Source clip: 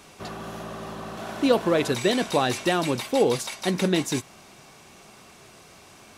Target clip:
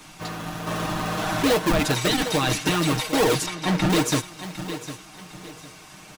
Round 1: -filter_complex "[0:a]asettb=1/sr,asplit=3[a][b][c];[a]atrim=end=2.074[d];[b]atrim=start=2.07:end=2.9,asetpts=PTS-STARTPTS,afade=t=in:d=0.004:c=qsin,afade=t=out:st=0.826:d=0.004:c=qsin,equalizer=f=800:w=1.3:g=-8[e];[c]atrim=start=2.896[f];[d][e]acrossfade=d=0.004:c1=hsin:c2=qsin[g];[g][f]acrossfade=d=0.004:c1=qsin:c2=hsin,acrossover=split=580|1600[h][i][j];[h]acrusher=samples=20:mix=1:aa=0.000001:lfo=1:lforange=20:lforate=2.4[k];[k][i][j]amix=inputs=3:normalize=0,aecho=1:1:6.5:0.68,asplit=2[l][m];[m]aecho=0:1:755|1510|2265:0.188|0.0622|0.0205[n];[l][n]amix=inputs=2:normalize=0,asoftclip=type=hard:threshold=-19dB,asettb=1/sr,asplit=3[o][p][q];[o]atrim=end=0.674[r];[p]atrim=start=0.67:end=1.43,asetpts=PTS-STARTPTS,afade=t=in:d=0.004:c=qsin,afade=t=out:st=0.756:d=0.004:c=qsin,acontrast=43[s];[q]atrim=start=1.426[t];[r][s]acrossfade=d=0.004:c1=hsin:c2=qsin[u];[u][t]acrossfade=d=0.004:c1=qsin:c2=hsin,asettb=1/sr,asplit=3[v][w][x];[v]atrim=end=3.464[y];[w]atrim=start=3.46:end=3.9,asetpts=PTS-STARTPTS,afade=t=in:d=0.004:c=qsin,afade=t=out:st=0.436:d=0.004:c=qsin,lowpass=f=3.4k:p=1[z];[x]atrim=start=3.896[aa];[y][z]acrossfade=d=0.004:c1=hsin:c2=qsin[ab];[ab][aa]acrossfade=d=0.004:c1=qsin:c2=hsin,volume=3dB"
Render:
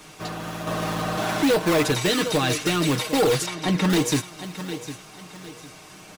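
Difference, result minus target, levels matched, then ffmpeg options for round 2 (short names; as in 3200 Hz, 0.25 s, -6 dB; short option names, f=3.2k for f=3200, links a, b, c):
decimation with a swept rate: distortion -13 dB
-filter_complex "[0:a]asettb=1/sr,asplit=3[a][b][c];[a]atrim=end=2.074[d];[b]atrim=start=2.07:end=2.9,asetpts=PTS-STARTPTS,afade=t=in:d=0.004:c=qsin,afade=t=out:st=0.826:d=0.004:c=qsin,equalizer=f=800:w=1.3:g=-8[e];[c]atrim=start=2.896[f];[d][e]acrossfade=d=0.004:c1=hsin:c2=qsin[g];[g][f]acrossfade=d=0.004:c1=qsin:c2=hsin,acrossover=split=580|1600[h][i][j];[h]acrusher=samples=58:mix=1:aa=0.000001:lfo=1:lforange=58:lforate=2.4[k];[k][i][j]amix=inputs=3:normalize=0,aecho=1:1:6.5:0.68,asplit=2[l][m];[m]aecho=0:1:755|1510|2265:0.188|0.0622|0.0205[n];[l][n]amix=inputs=2:normalize=0,asoftclip=type=hard:threshold=-19dB,asettb=1/sr,asplit=3[o][p][q];[o]atrim=end=0.674[r];[p]atrim=start=0.67:end=1.43,asetpts=PTS-STARTPTS,afade=t=in:d=0.004:c=qsin,afade=t=out:st=0.756:d=0.004:c=qsin,acontrast=43[s];[q]atrim=start=1.426[t];[r][s]acrossfade=d=0.004:c1=hsin:c2=qsin[u];[u][t]acrossfade=d=0.004:c1=qsin:c2=hsin,asettb=1/sr,asplit=3[v][w][x];[v]atrim=end=3.464[y];[w]atrim=start=3.46:end=3.9,asetpts=PTS-STARTPTS,afade=t=in:d=0.004:c=qsin,afade=t=out:st=0.436:d=0.004:c=qsin,lowpass=f=3.4k:p=1[z];[x]atrim=start=3.896[aa];[y][z]acrossfade=d=0.004:c1=hsin:c2=qsin[ab];[ab][aa]acrossfade=d=0.004:c1=qsin:c2=hsin,volume=3dB"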